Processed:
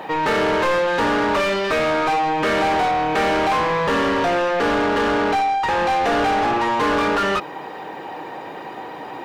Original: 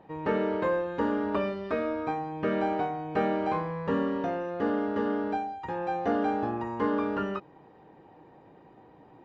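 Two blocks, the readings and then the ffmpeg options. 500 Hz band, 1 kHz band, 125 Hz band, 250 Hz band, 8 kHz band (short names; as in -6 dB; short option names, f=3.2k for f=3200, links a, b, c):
+9.5 dB, +13.5 dB, +6.0 dB, +5.5 dB, n/a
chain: -filter_complex "[0:a]crystalizer=i=6.5:c=0,asplit=2[a][b];[b]highpass=f=720:p=1,volume=31dB,asoftclip=type=tanh:threshold=-11.5dB[c];[a][c]amix=inputs=2:normalize=0,lowpass=f=2.1k:p=1,volume=-6dB"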